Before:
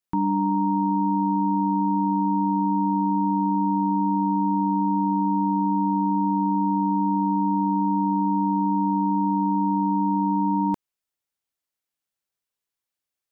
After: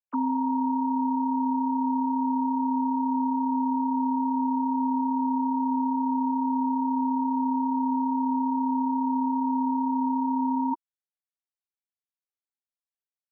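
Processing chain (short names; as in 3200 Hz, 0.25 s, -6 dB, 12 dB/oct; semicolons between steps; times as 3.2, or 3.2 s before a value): sine-wave speech; gain -3.5 dB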